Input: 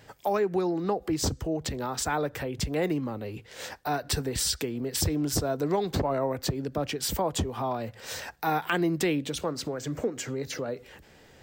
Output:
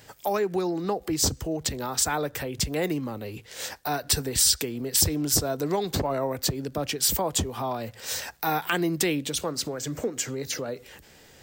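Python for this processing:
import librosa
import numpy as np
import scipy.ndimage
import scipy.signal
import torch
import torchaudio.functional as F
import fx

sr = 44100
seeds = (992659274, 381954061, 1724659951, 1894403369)

y = fx.high_shelf(x, sr, hz=4000.0, db=10.5)
y = fx.dmg_crackle(y, sr, seeds[0], per_s=99.0, level_db=-49.0)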